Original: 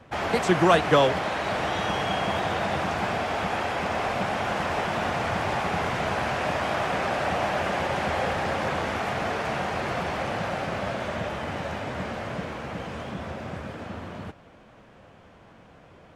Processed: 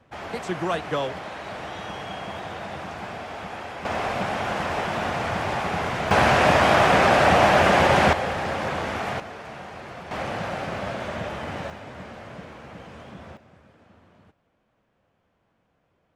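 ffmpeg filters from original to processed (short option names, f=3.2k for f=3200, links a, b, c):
-af "asetnsamples=n=441:p=0,asendcmd='3.85 volume volume 0.5dB;6.11 volume volume 9.5dB;8.13 volume volume 0dB;9.2 volume volume -10dB;10.11 volume volume -0.5dB;11.7 volume volume -7.5dB;13.37 volume volume -18.5dB',volume=-7.5dB"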